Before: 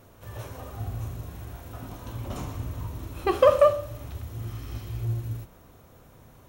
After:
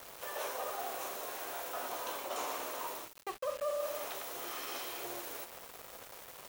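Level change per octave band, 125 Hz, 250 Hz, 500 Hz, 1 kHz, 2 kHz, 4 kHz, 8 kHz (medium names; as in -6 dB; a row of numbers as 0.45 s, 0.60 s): under -35 dB, -14.0 dB, -14.5 dB, -7.0 dB, -1.5 dB, +0.5 dB, no reading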